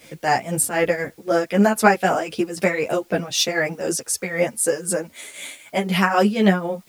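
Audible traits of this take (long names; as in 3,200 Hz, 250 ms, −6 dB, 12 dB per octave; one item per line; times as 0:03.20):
tremolo triangle 3.9 Hz, depth 80%
a quantiser's noise floor 10 bits, dither triangular
a shimmering, thickened sound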